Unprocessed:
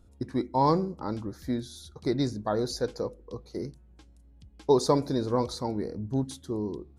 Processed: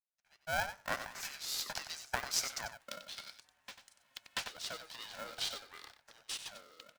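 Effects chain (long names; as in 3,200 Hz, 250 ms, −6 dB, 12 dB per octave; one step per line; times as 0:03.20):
fade in at the beginning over 1.53 s
source passing by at 0:02.74, 46 m/s, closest 4.8 metres
camcorder AGC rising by 19 dB per second
high-shelf EQ 6,700 Hz −8.5 dB
downward compressor 4 to 1, threshold −41 dBFS, peak gain reduction 11.5 dB
Butterworth high-pass 990 Hz 72 dB per octave
single-tap delay 93 ms −10 dB
ring modulator with a square carrier 400 Hz
level +17 dB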